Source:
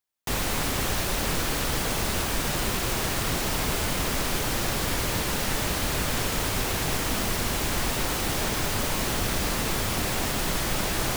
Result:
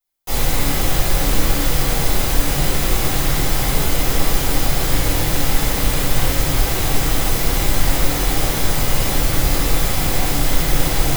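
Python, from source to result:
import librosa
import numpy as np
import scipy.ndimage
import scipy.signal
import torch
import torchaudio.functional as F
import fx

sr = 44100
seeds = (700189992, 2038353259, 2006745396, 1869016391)

y = fx.high_shelf(x, sr, hz=11000.0, db=9.0)
y = fx.room_shoebox(y, sr, seeds[0], volume_m3=120.0, walls='mixed', distance_m=5.0)
y = y * librosa.db_to_amplitude(-10.0)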